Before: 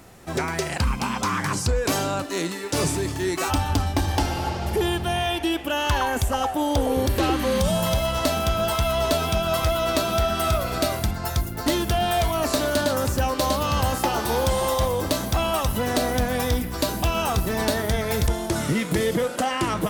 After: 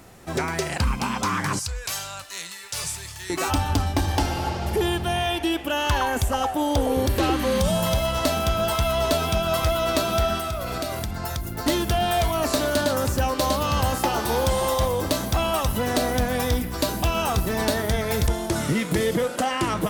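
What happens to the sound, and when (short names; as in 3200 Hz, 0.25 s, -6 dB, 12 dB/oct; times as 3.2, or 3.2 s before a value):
1.59–3.3 passive tone stack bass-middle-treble 10-0-10
10.37–11.5 compressor 10:1, threshold -24 dBFS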